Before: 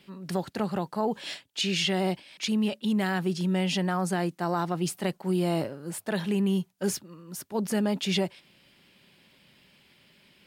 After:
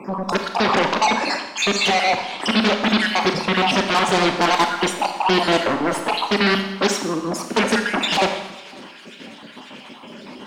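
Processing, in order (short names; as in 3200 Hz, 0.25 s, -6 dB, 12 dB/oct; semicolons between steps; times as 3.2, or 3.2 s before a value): random spectral dropouts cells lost 54%; graphic EQ 250/1000/2000/4000 Hz +11/+10/-7/-4 dB; in parallel at -8 dB: sine folder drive 19 dB, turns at -15 dBFS; on the sum: bit-crush 12-bit; three-band isolator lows -14 dB, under 280 Hz, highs -21 dB, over 6000 Hz; on a send: thinning echo 0.545 s, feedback 77%, high-pass 600 Hz, level -23.5 dB; on the sum: Schroeder reverb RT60 0.96 s, combs from 28 ms, DRR 5.5 dB; gain +6.5 dB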